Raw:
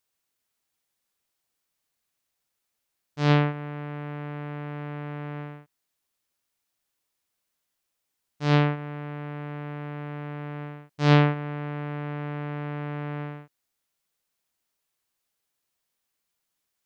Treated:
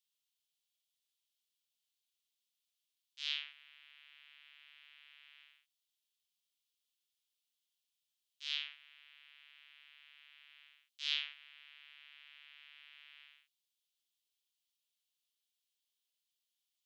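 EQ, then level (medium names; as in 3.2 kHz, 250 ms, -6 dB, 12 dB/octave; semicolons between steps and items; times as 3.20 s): ladder high-pass 2.8 kHz, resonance 55%; +1.0 dB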